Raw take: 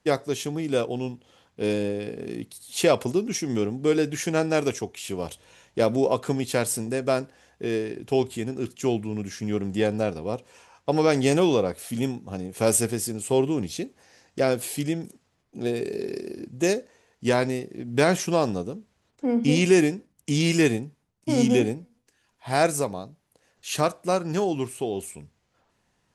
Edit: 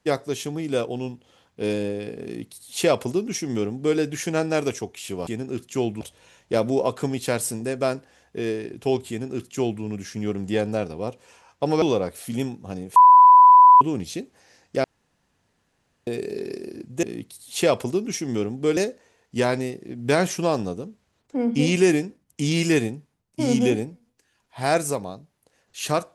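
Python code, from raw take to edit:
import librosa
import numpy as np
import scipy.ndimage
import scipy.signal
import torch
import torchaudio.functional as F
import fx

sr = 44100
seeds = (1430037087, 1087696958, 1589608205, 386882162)

y = fx.edit(x, sr, fx.duplicate(start_s=2.24, length_s=1.74, to_s=16.66),
    fx.duplicate(start_s=8.35, length_s=0.74, to_s=5.27),
    fx.cut(start_s=11.08, length_s=0.37),
    fx.bleep(start_s=12.59, length_s=0.85, hz=996.0, db=-7.0),
    fx.room_tone_fill(start_s=14.47, length_s=1.23), tone=tone)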